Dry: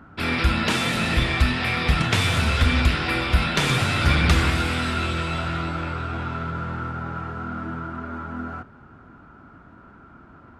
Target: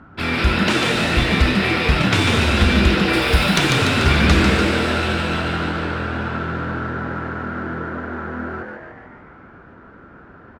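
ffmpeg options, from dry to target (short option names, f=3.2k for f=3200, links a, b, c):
-filter_complex "[0:a]adynamicsmooth=sensitivity=8:basefreq=6.8k,asettb=1/sr,asplit=3[a][b][c];[a]atrim=end=3.134[d];[b]atrim=start=3.13:end=3.58,asetpts=PTS-STARTPTS,afade=t=in:d=0.004:c=qsin,afade=t=out:st=0.446:d=0.004:c=qsin,aemphasis=mode=production:type=50kf[e];[c]atrim=start=3.576[f];[d][e]acrossfade=d=0.004:c1=hsin:c2=qsin[g];[g][f]acrossfade=d=0.004:c1=qsin:c2=hsin,asplit=9[h][i][j][k][l][m][n][o][p];[i]adelay=146,afreqshift=130,volume=-4.5dB[q];[j]adelay=292,afreqshift=260,volume=-9.5dB[r];[k]adelay=438,afreqshift=390,volume=-14.6dB[s];[l]adelay=584,afreqshift=520,volume=-19.6dB[t];[m]adelay=730,afreqshift=650,volume=-24.6dB[u];[n]adelay=876,afreqshift=780,volume=-29.7dB[v];[o]adelay=1022,afreqshift=910,volume=-34.7dB[w];[p]adelay=1168,afreqshift=1040,volume=-39.8dB[x];[h][q][r][s][t][u][v][w][x]amix=inputs=9:normalize=0,volume=2.5dB"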